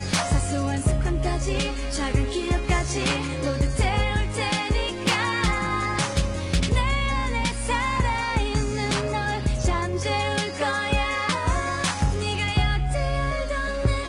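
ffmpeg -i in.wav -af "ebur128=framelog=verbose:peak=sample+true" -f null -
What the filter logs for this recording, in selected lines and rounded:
Integrated loudness:
  I:         -24.5 LUFS
  Threshold: -34.5 LUFS
Loudness range:
  LRA:         0.9 LU
  Threshold: -44.4 LUFS
  LRA low:   -24.9 LUFS
  LRA high:  -24.0 LUFS
Sample peak:
  Peak:      -11.9 dBFS
True peak:
  Peak:      -11.6 dBFS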